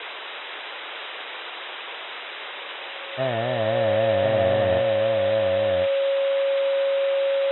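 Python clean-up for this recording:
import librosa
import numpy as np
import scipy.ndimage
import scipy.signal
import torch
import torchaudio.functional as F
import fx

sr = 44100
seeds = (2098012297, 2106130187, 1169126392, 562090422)

y = fx.notch(x, sr, hz=550.0, q=30.0)
y = fx.noise_reduce(y, sr, print_start_s=0.13, print_end_s=0.63, reduce_db=30.0)
y = fx.fix_echo_inverse(y, sr, delay_ms=1048, level_db=-4.0)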